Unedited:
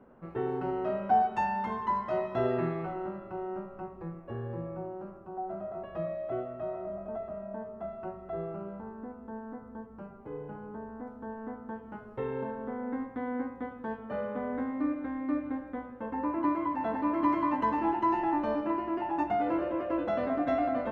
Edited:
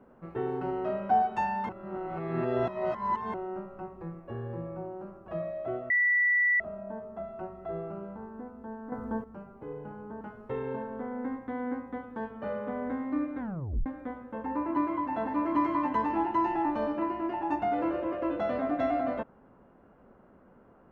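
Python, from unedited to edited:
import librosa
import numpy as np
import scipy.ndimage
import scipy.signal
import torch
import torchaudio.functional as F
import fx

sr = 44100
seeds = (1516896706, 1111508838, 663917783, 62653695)

y = fx.edit(x, sr, fx.reverse_span(start_s=1.69, length_s=1.65),
    fx.cut(start_s=5.28, length_s=0.64),
    fx.bleep(start_s=6.54, length_s=0.7, hz=1960.0, db=-21.5),
    fx.clip_gain(start_s=9.56, length_s=0.32, db=10.0),
    fx.cut(start_s=10.85, length_s=1.04),
    fx.tape_stop(start_s=15.07, length_s=0.47), tone=tone)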